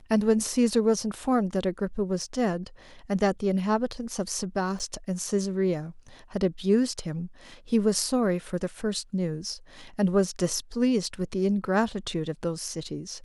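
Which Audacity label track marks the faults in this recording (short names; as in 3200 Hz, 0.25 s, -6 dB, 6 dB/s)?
4.790000	4.800000	gap 8 ms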